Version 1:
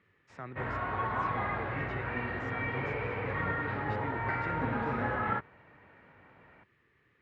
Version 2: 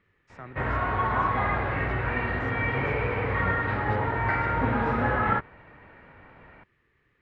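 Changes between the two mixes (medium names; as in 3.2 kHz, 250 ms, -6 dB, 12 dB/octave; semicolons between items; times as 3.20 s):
background +7.0 dB; master: remove high-pass 82 Hz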